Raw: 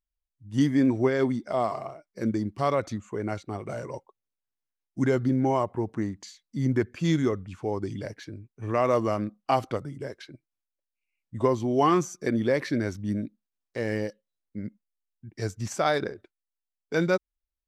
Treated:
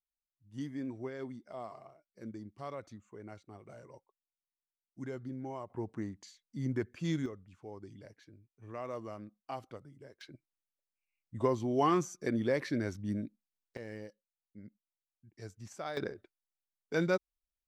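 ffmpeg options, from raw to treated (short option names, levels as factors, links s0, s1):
-af "asetnsamples=n=441:p=0,asendcmd='5.7 volume volume -9.5dB;7.26 volume volume -17.5dB;10.21 volume volume -6.5dB;13.77 volume volume -16dB;15.97 volume volume -6dB',volume=0.133"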